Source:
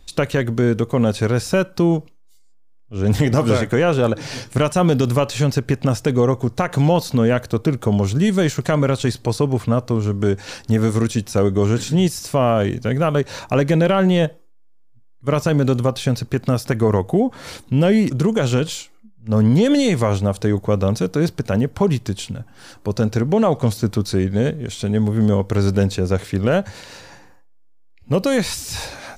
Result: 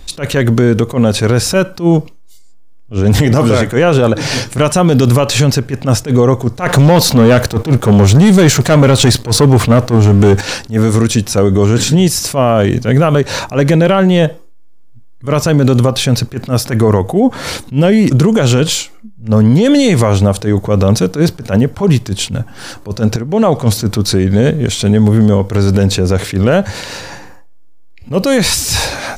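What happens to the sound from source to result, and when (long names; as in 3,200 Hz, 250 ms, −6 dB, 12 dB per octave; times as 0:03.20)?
0:06.66–0:10.41: leveller curve on the samples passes 2
0:23.16–0:23.60: fade in quadratic, from −16 dB
whole clip: boost into a limiter +14.5 dB; level that may rise only so fast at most 240 dB per second; level −1 dB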